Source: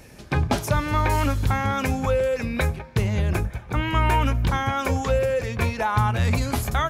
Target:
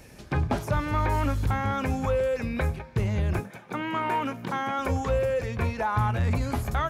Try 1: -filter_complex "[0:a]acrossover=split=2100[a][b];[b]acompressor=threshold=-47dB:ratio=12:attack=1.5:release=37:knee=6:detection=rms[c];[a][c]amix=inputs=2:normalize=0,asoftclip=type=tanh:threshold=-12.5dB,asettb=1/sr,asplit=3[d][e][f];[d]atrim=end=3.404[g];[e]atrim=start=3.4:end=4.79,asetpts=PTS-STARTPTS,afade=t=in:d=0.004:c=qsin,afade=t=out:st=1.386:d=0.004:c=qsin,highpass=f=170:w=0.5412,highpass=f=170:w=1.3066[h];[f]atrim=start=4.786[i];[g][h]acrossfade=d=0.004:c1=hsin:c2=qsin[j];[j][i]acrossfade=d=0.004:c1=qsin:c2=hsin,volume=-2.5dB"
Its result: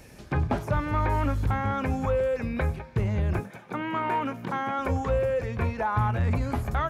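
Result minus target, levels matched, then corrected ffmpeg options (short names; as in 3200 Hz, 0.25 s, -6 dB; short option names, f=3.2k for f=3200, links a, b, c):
compressor: peak gain reduction +7.5 dB
-filter_complex "[0:a]acrossover=split=2100[a][b];[b]acompressor=threshold=-39dB:ratio=12:attack=1.5:release=37:knee=6:detection=rms[c];[a][c]amix=inputs=2:normalize=0,asoftclip=type=tanh:threshold=-12.5dB,asettb=1/sr,asplit=3[d][e][f];[d]atrim=end=3.404[g];[e]atrim=start=3.4:end=4.79,asetpts=PTS-STARTPTS,afade=t=in:d=0.004:c=qsin,afade=t=out:st=1.386:d=0.004:c=qsin,highpass=f=170:w=0.5412,highpass=f=170:w=1.3066[h];[f]atrim=start=4.786[i];[g][h]acrossfade=d=0.004:c1=hsin:c2=qsin[j];[j][i]acrossfade=d=0.004:c1=qsin:c2=hsin,volume=-2.5dB"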